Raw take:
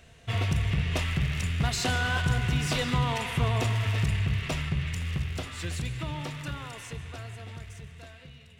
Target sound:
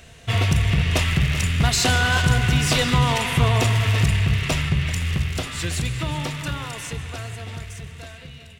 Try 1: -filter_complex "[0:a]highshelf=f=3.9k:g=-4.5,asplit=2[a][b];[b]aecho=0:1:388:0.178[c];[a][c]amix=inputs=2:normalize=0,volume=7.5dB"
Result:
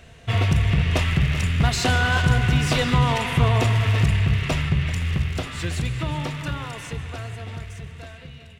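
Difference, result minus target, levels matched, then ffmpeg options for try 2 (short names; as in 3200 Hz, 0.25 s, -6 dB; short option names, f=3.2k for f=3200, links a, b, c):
8000 Hz band -6.5 dB
-filter_complex "[0:a]highshelf=f=3.9k:g=4.5,asplit=2[a][b];[b]aecho=0:1:388:0.178[c];[a][c]amix=inputs=2:normalize=0,volume=7.5dB"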